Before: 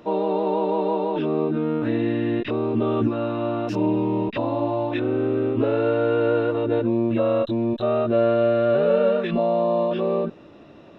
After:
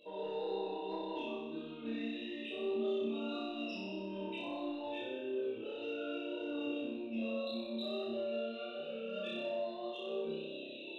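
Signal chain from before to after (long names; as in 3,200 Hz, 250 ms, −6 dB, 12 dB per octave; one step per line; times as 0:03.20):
high-pass filter 200 Hz 12 dB per octave
high shelf with overshoot 2,100 Hz +13 dB, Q 1.5
brickwall limiter −20 dBFS, peak gain reduction 11.5 dB
reversed playback
downward compressor 20 to 1, threshold −37 dBFS, peak gain reduction 14 dB
reversed playback
flanger 0.19 Hz, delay 1.8 ms, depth 3.4 ms, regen +32%
spectral peaks only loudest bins 32
chorus effect 1.7 Hz, delay 20 ms, depth 5.3 ms
soft clipping −36 dBFS, distortion −27 dB
on a send: flutter between parallel walls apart 5.3 metres, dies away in 1.1 s
on the sum: level +2.5 dB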